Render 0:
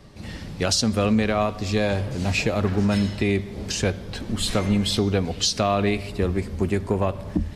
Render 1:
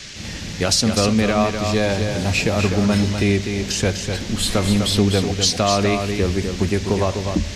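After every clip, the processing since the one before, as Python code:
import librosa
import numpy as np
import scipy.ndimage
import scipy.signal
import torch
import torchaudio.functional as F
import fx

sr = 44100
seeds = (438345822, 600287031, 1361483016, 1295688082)

y = fx.high_shelf(x, sr, hz=10000.0, db=6.5)
y = fx.dmg_noise_band(y, sr, seeds[0], low_hz=1600.0, high_hz=6600.0, level_db=-40.0)
y = y + 10.0 ** (-6.5 / 20.0) * np.pad(y, (int(250 * sr / 1000.0), 0))[:len(y)]
y = F.gain(torch.from_numpy(y), 3.0).numpy()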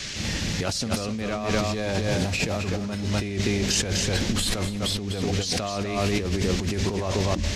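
y = fx.over_compress(x, sr, threshold_db=-24.0, ratio=-1.0)
y = F.gain(torch.from_numpy(y), -2.0).numpy()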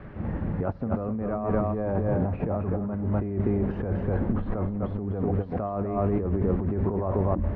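y = scipy.signal.sosfilt(scipy.signal.butter(4, 1200.0, 'lowpass', fs=sr, output='sos'), x)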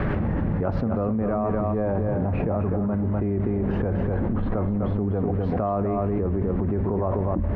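y = fx.env_flatten(x, sr, amount_pct=100)
y = F.gain(torch.from_numpy(y), -2.0).numpy()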